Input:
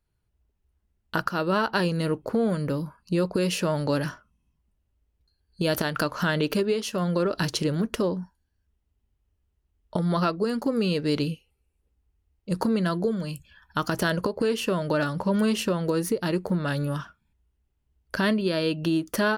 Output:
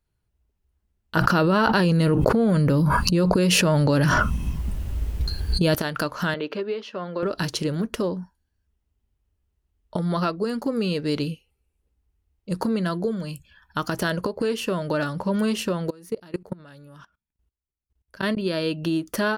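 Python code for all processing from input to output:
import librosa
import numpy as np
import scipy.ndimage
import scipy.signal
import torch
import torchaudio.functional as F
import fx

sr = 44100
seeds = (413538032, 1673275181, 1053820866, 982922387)

y = fx.chain(x, sr, fx.bass_treble(bass_db=5, treble_db=-1),
    fx.env_flatten(amount_pct=100), at=(1.16, 5.75))
y = fx.chain(y, sr, fx.bessel_highpass(hz=370.0, order=2),
    fx.air_absorb(metres=250.0), at=(6.34, 7.23))
y = fx.chain(y, sr, fx.peak_eq(hz=140.0, db=-2.0, octaves=0.81),
    fx.level_steps(step_db=23), at=(15.9, 18.37))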